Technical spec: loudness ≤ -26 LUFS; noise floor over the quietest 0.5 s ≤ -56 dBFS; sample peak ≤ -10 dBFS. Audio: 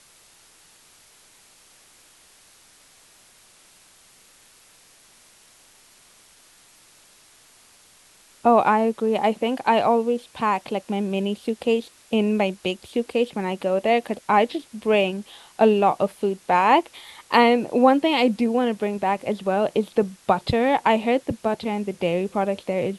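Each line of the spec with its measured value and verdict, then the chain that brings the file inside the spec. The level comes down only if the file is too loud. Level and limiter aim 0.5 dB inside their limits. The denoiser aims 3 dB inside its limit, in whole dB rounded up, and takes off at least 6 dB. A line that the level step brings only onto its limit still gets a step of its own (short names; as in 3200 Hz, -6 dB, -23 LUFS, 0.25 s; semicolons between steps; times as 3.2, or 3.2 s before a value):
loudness -22.0 LUFS: fail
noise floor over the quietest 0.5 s -54 dBFS: fail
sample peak -4.0 dBFS: fail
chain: gain -4.5 dB; limiter -10.5 dBFS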